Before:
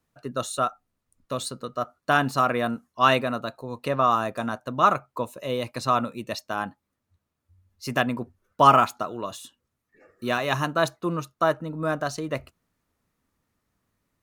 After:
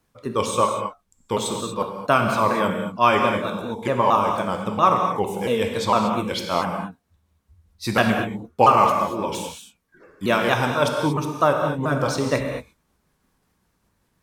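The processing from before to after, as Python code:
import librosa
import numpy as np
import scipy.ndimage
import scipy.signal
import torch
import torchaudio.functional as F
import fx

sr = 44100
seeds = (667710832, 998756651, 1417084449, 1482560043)

p1 = fx.pitch_ramps(x, sr, semitones=-4.0, every_ms=228)
p2 = fx.rev_gated(p1, sr, seeds[0], gate_ms=260, shape='flat', drr_db=2.5)
p3 = fx.rider(p2, sr, range_db=5, speed_s=0.5)
p4 = p2 + F.gain(torch.from_numpy(p3), 2.5).numpy()
y = F.gain(torch.from_numpy(p4), -3.5).numpy()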